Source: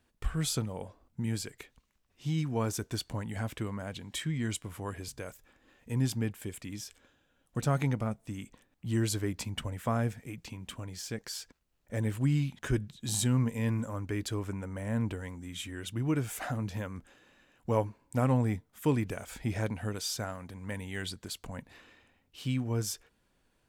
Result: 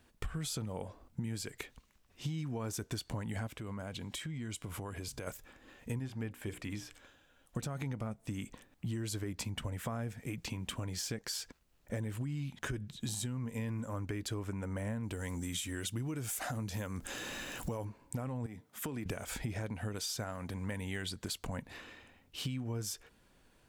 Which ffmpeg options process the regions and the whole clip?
-filter_complex "[0:a]asettb=1/sr,asplit=3[s0][s1][s2];[s0]atrim=end=3.474[s3];[s1]atrim=start=3.47:end=5.27,asetpts=PTS-STARTPTS,afade=t=in:d=0.004:c=qsin,afade=t=out:st=1.796:d=0.004:c=qsin,acompressor=threshold=0.00631:ratio=6:attack=3.2:release=140:knee=1:detection=peak,bandreject=f=1800:w=14[s4];[s2]atrim=start=5.266[s5];[s3][s4]acrossfade=d=0.004:c1=hsin:c2=qsin[s6];[s6][s5]acrossfade=d=0.004:c1=qsin:c2=hsin,asettb=1/sr,asplit=3[s7][s8][s9];[s7]atrim=end=5.994[s10];[s8]atrim=start=5.99:end=7.57,asetpts=PTS-STARTPTS,afade=t=in:d=0.004:c=qsin,afade=t=out:st=1.576:d=0.004:c=qsin,acrossover=split=2700[s11][s12];[s12]acompressor=threshold=0.00158:ratio=4:attack=1:release=60[s13];[s11][s13]amix=inputs=2:normalize=0,equalizer=f=180:w=0.54:g=-5,bandreject=f=60:t=h:w=6,bandreject=f=120:t=h:w=6,bandreject=f=180:t=h:w=6,bandreject=f=240:t=h:w=6,bandreject=f=300:t=h:w=6,bandreject=f=360:t=h:w=6,bandreject=f=420:t=h:w=6,bandreject=f=480:t=h:w=6,bandreject=f=540:t=h:w=6[s14];[s9]atrim=start=7.566[s15];[s10][s14]acrossfade=d=0.004:c1=hsin:c2=qsin[s16];[s16][s15]acrossfade=d=0.004:c1=qsin:c2=hsin,asettb=1/sr,asplit=3[s17][s18][s19];[s17]atrim=end=15.034[s20];[s18]atrim=start=15.03:end=17.85,asetpts=PTS-STARTPTS,afade=t=in:d=0.004:c=qsin,afade=t=out:st=2.816:d=0.004:c=qsin,bass=f=250:g=0,treble=f=4000:g=9,acompressor=mode=upward:threshold=0.02:ratio=2.5:attack=3.2:release=140:knee=2.83:detection=peak[s21];[s19]atrim=start=17.846[s22];[s20][s21]acrossfade=d=0.004:c1=hsin:c2=qsin[s23];[s23][s22]acrossfade=d=0.004:c1=qsin:c2=hsin,asettb=1/sr,asplit=3[s24][s25][s26];[s24]atrim=end=18.464[s27];[s25]atrim=start=18.46:end=19.06,asetpts=PTS-STARTPTS,afade=t=in:d=0.004:c=qsin,afade=t=out:st=0.596:d=0.004:c=qsin,highpass=140,acompressor=threshold=0.0126:ratio=12:attack=3.2:release=140:knee=1:detection=peak[s28];[s26]atrim=start=19.056[s29];[s27][s28]acrossfade=d=0.004:c1=hsin:c2=qsin[s30];[s30][s29]acrossfade=d=0.004:c1=qsin:c2=hsin,alimiter=level_in=1.12:limit=0.0631:level=0:latency=1:release=57,volume=0.891,acompressor=threshold=0.00891:ratio=10,volume=2"

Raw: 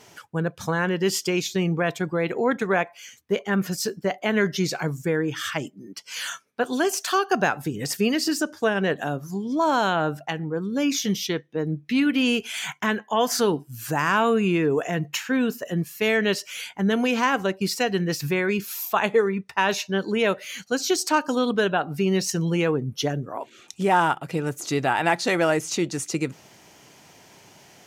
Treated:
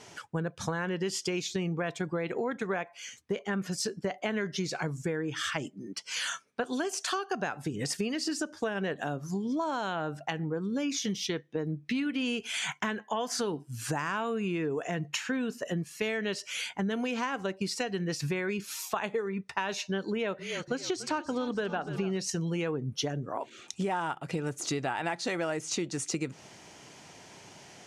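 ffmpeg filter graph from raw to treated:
-filter_complex "[0:a]asettb=1/sr,asplit=3[s0][s1][s2];[s0]atrim=end=20.104[s3];[s1]atrim=start=20.1:end=22.17,asetpts=PTS-STARTPTS,afade=t=in:d=0.004:c=qsin,afade=t=out:st=2.066:d=0.004:c=qsin,aemphasis=mode=reproduction:type=cd,asplit=7[s4][s5][s6][s7][s8][s9][s10];[s5]adelay=287,afreqshift=-31,volume=0.168[s11];[s6]adelay=574,afreqshift=-62,volume=0.0989[s12];[s7]adelay=861,afreqshift=-93,volume=0.0582[s13];[s8]adelay=1148,afreqshift=-124,volume=0.0347[s14];[s9]adelay=1435,afreqshift=-155,volume=0.0204[s15];[s10]adelay=1722,afreqshift=-186,volume=0.012[s16];[s4][s11][s12][s13][s14][s15][s16]amix=inputs=7:normalize=0,atrim=end_sample=91287[s17];[s2]atrim=start=22.166[s18];[s3][s17]acrossfade=d=0.004:c1=hsin:c2=qsin[s19];[s19][s18]acrossfade=d=0.004:c1=qsin:c2=hsin,lowpass=f=10000:w=0.5412,lowpass=f=10000:w=1.3066,acompressor=threshold=0.0355:ratio=6"

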